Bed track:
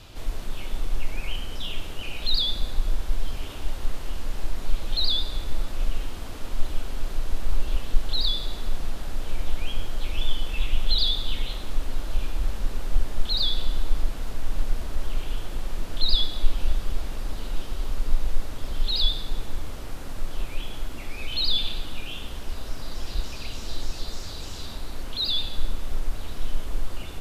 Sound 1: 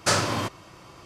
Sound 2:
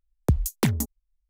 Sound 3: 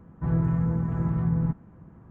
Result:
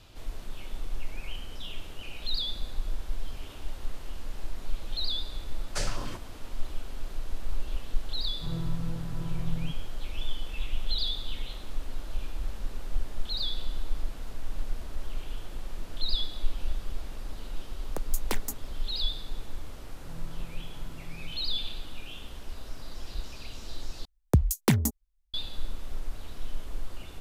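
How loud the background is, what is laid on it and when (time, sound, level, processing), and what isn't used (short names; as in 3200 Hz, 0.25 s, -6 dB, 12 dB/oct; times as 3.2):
bed track -7.5 dB
5.69 add 1 -11 dB + stepped notch 11 Hz 270–3400 Hz
8.2 add 3 -10 dB + notch comb 210 Hz
17.68 add 2 -5 dB + HPF 460 Hz
19.81 add 3 -17.5 dB + low shelf 390 Hz -7 dB
24.05 replace with 2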